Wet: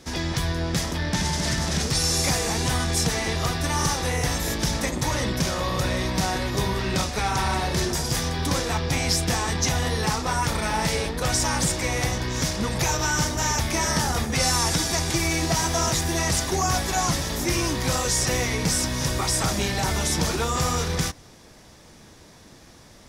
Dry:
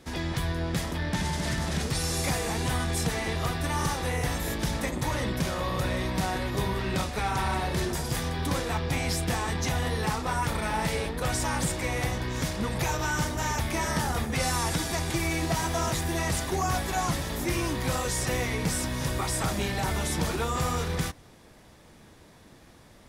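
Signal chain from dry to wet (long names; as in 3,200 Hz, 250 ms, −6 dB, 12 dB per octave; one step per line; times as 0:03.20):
parametric band 5,700 Hz +8 dB 0.82 octaves
level +3.5 dB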